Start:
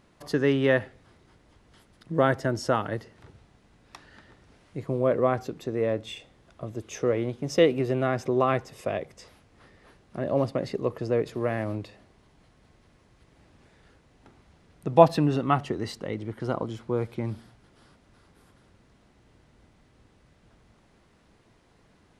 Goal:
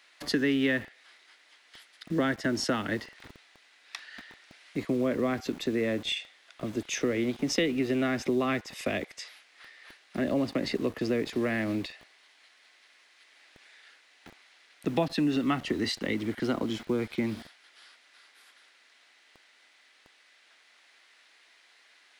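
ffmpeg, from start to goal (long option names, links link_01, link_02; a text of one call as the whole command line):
ffmpeg -i in.wav -filter_complex "[0:a]equalizer=frequency=125:width_type=o:width=1:gain=-8,equalizer=frequency=250:width_type=o:width=1:gain=10,equalizer=frequency=500:width_type=o:width=1:gain=-5,equalizer=frequency=1000:width_type=o:width=1:gain=-7,equalizer=frequency=2000:width_type=o:width=1:gain=7,equalizer=frequency=4000:width_type=o:width=1:gain=6,acrossover=split=120|260[link_01][link_02][link_03];[link_01]acompressor=threshold=-45dB:ratio=4[link_04];[link_02]acompressor=threshold=-44dB:ratio=4[link_05];[link_03]acompressor=threshold=-31dB:ratio=4[link_06];[link_04][link_05][link_06]amix=inputs=3:normalize=0,acrossover=split=620|1200[link_07][link_08][link_09];[link_07]aeval=exprs='val(0)*gte(abs(val(0)),0.00447)':channel_layout=same[link_10];[link_10][link_08][link_09]amix=inputs=3:normalize=0,volume=4dB" out.wav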